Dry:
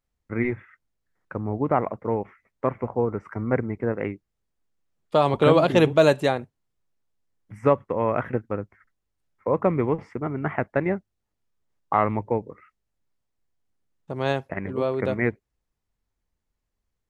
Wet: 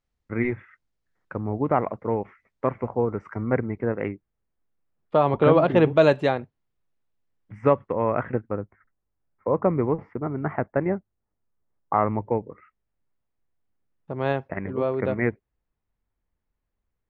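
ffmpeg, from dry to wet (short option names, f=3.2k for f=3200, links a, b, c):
-af "asetnsamples=n=441:p=0,asendcmd='3.45 lowpass f 3900;4.08 lowpass f 2100;5.97 lowpass f 3600;7.92 lowpass f 2300;8.52 lowpass f 1500;12.24 lowpass f 2400',lowpass=6.4k"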